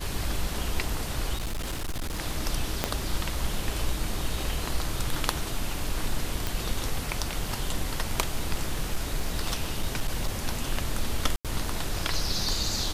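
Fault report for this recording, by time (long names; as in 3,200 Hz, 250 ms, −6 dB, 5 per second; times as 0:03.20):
0:01.35–0:02.20: clipping −27.5 dBFS
0:02.84: click −8 dBFS
0:06.47: click
0:08.69–0:10.47: clipping −20.5 dBFS
0:11.36–0:11.45: drop-out 87 ms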